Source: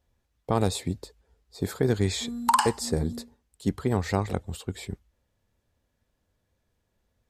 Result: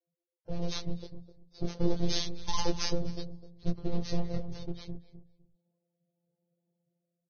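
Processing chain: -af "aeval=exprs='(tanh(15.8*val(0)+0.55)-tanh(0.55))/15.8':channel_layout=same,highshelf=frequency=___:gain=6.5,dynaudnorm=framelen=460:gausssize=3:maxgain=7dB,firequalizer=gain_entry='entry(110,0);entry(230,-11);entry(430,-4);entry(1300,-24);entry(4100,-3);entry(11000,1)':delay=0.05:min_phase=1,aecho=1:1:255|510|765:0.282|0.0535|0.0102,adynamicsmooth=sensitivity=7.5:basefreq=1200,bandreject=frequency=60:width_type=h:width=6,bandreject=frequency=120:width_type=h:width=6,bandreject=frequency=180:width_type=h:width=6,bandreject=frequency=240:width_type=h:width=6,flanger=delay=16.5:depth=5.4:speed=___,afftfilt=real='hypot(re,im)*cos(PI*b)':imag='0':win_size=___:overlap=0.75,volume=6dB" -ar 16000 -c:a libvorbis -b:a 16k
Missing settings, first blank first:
5900, 0.34, 1024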